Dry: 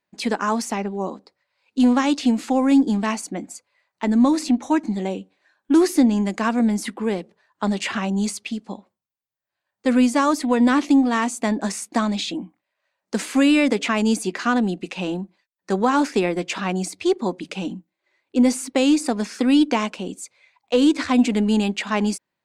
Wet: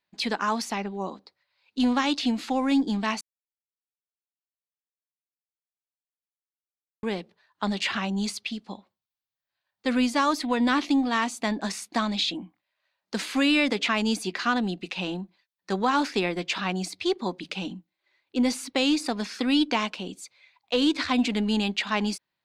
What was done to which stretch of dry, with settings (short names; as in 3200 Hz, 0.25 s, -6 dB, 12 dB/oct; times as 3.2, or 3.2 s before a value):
3.21–7.03 mute
whole clip: graphic EQ 250/500/4000/8000 Hz -4/-4/+7/-7 dB; gain -2.5 dB